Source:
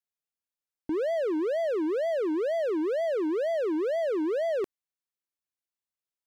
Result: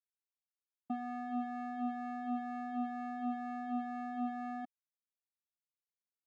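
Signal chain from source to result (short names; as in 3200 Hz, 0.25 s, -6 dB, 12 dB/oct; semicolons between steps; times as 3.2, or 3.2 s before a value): vocoder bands 4, square 245 Hz; power-law curve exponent 2; gain -6.5 dB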